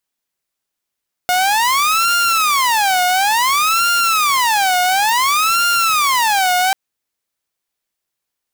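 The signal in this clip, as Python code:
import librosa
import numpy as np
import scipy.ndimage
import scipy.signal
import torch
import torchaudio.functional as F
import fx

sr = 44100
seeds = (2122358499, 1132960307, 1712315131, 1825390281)

y = fx.siren(sr, length_s=5.44, kind='wail', low_hz=722.0, high_hz=1400.0, per_s=0.57, wave='saw', level_db=-10.0)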